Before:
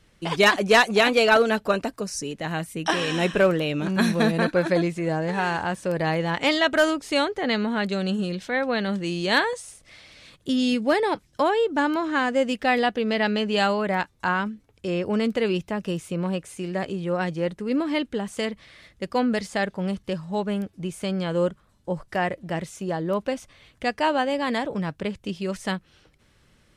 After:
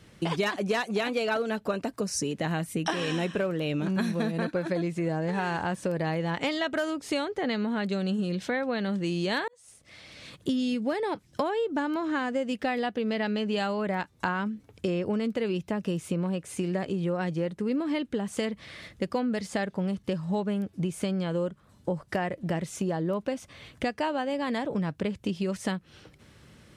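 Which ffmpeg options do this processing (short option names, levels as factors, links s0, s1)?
-filter_complex "[0:a]asplit=2[s0][s1];[s0]atrim=end=9.48,asetpts=PTS-STARTPTS,afade=t=out:st=9.476:d=0.004:c=hsin[s2];[s1]atrim=start=9.48,asetpts=PTS-STARTPTS,afade=t=in:d=1.05[s3];[s2][s3]concat=n=2:v=0:a=1,highpass=80,lowshelf=f=440:g=5,acompressor=threshold=0.0282:ratio=6,volume=1.68"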